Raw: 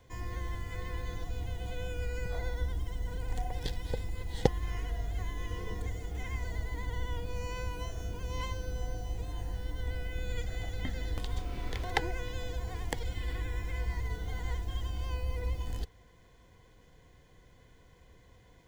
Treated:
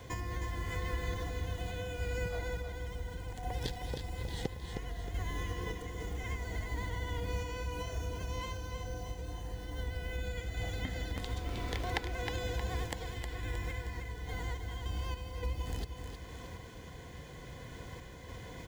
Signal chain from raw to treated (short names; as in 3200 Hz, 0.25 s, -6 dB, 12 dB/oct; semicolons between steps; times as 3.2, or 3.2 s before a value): HPF 50 Hz; compressor, threshold -48 dBFS, peak gain reduction 27.5 dB; random-step tremolo; feedback echo 0.313 s, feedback 48%, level -6.5 dB; gain +15 dB